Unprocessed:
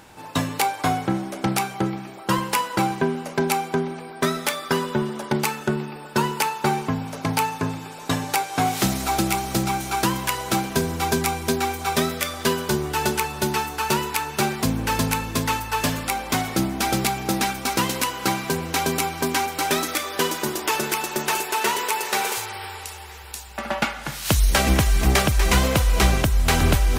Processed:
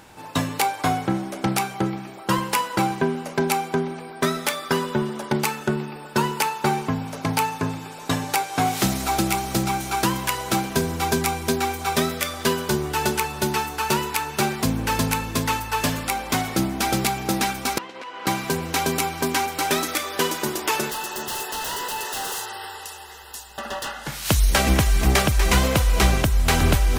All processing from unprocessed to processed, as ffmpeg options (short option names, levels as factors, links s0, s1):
-filter_complex "[0:a]asettb=1/sr,asplit=3[s0][s1][s2];[s0]atrim=end=17.784[s3];[s1]atrim=start=17.78:end=18.27,asetpts=PTS-STARTPTS,afade=t=in:d=0.004:c=qsin,afade=t=out:st=0.486:d=0.004:c=qsin,acompressor=threshold=0.0398:ratio=8:attack=3.2:release=140:knee=1:detection=peak,highpass=360,lowpass=2900,agate=range=0.0224:threshold=0.0178:ratio=3:release=100:detection=peak[s4];[s2]atrim=start=18.266[s5];[s3][s4]acrossfade=d=0.004:c1=hsin:c2=qsin[s6];[s6][s5]acrossfade=d=0.004:c1=qsin:c2=hsin,asettb=1/sr,asplit=3[s7][s8][s9];[s7]atrim=end=20.904[s10];[s8]atrim=start=20.9:end=24.07,asetpts=PTS-STARTPTS,afade=t=in:d=0.004:c=qsin,afade=t=out:st=3.166:d=0.004:c=qsin,equalizer=f=92:w=0.71:g=-11.5,aeval=exprs='0.0668*(abs(mod(val(0)/0.0668+3,4)-2)-1)':c=same,asuperstop=centerf=2300:order=20:qfactor=5.2[s11];[s9]atrim=start=24.066[s12];[s10][s11]acrossfade=d=0.004:c1=hsin:c2=qsin[s13];[s13][s12]acrossfade=d=0.004:c1=qsin:c2=hsin"